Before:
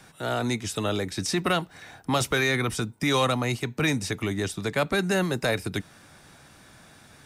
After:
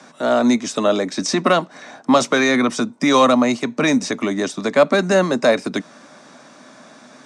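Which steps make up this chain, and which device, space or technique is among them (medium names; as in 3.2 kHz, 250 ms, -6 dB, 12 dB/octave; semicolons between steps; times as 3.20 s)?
television speaker (cabinet simulation 180–7800 Hz, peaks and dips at 250 Hz +10 dB, 600 Hz +10 dB, 1.1 kHz +7 dB, 2.9 kHz -3 dB, 6.1 kHz +4 dB); trim +5.5 dB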